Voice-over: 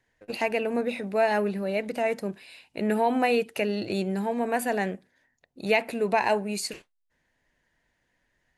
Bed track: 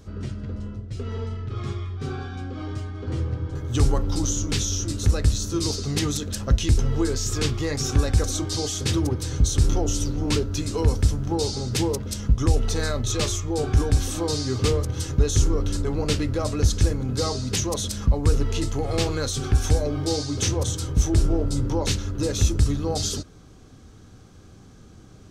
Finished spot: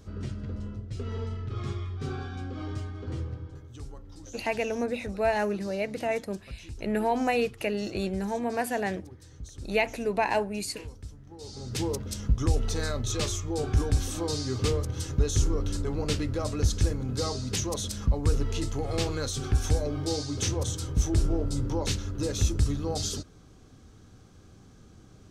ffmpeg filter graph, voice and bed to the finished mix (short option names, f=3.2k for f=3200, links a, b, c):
-filter_complex "[0:a]adelay=4050,volume=-2.5dB[a];[1:a]volume=14dB,afade=t=out:st=2.82:d=0.95:silence=0.112202,afade=t=in:st=11.38:d=0.55:silence=0.133352[b];[a][b]amix=inputs=2:normalize=0"